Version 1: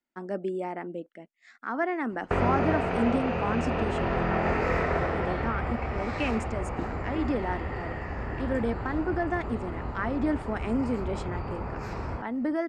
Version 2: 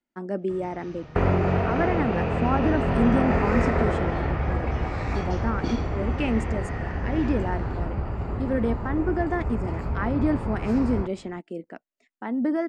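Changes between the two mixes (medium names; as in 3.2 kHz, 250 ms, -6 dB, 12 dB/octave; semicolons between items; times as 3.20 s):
first sound: unmuted; second sound: entry -1.15 s; master: add bass shelf 380 Hz +7 dB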